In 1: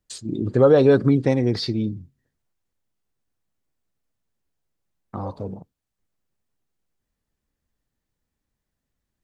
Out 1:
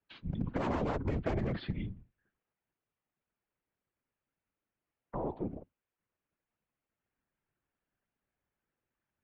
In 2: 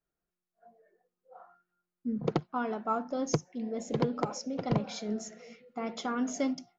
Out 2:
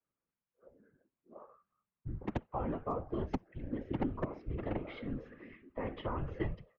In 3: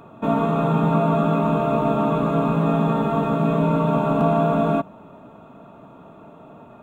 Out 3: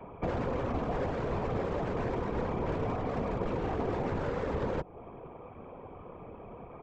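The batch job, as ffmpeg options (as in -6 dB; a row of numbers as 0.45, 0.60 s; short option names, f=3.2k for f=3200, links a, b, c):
-filter_complex "[0:a]highpass=f=250:t=q:w=0.5412,highpass=f=250:t=q:w=1.307,lowpass=f=3k:t=q:w=0.5176,lowpass=f=3k:t=q:w=0.7071,lowpass=f=3k:t=q:w=1.932,afreqshift=-190,acontrast=27,aresample=16000,aeval=exprs='0.188*(abs(mod(val(0)/0.188+3,4)-2)-1)':c=same,aresample=44100,acrossover=split=260|820[a][b][c];[a]acompressor=threshold=-28dB:ratio=4[d];[b]acompressor=threshold=-29dB:ratio=4[e];[c]acompressor=threshold=-39dB:ratio=4[f];[d][e][f]amix=inputs=3:normalize=0,afftfilt=real='hypot(re,im)*cos(2*PI*random(0))':imag='hypot(re,im)*sin(2*PI*random(1))':win_size=512:overlap=0.75"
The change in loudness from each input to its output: -17.5, -6.0, -13.5 LU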